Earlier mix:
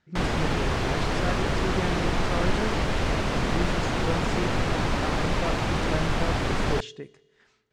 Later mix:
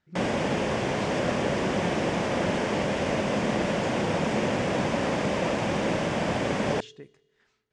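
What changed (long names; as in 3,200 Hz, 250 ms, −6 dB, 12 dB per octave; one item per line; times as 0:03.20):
speech −6.0 dB
background: add loudspeaker in its box 140–9,400 Hz, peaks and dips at 210 Hz +5 dB, 560 Hz +7 dB, 1,300 Hz −6 dB, 4,100 Hz −8 dB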